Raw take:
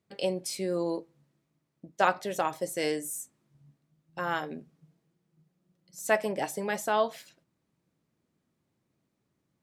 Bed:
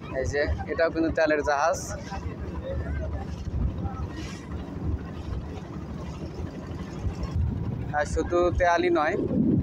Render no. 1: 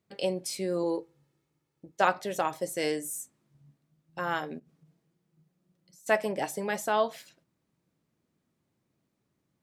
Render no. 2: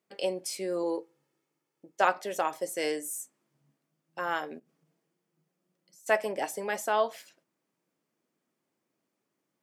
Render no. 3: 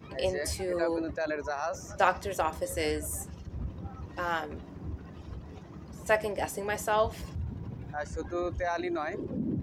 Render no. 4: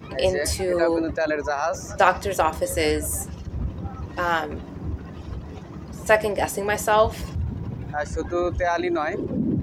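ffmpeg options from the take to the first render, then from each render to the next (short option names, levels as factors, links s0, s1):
-filter_complex "[0:a]asettb=1/sr,asplit=3[s0][s1][s2];[s0]atrim=end=0.834[s3];[s1]atrim=start=0.83:end=2,asetpts=PTS-STARTPTS,afade=t=in:d=0.004:c=qsin,afade=t=out:st=1.166:d=0.004:c=qsin,aecho=1:1:2.3:0.52,atrim=end_sample=51597[s4];[s2]atrim=start=1.996[s5];[s3][s4]acrossfade=d=0.004:c1=hsin:c2=qsin[s6];[s6][s5]acrossfade=d=0.004:c1=qsin:c2=hsin,asplit=3[s7][s8][s9];[s7]afade=t=out:st=4.58:d=0.02[s10];[s8]acompressor=threshold=0.002:ratio=12:attack=3.2:release=140:knee=1:detection=peak,afade=t=in:st=4.58:d=0.02,afade=t=out:st=6.06:d=0.02[s11];[s9]afade=t=in:st=6.06:d=0.02[s12];[s10][s11][s12]amix=inputs=3:normalize=0"
-af "highpass=300,equalizer=f=3900:t=o:w=0.22:g=-5.5"
-filter_complex "[1:a]volume=0.335[s0];[0:a][s0]amix=inputs=2:normalize=0"
-af "volume=2.66,alimiter=limit=0.708:level=0:latency=1"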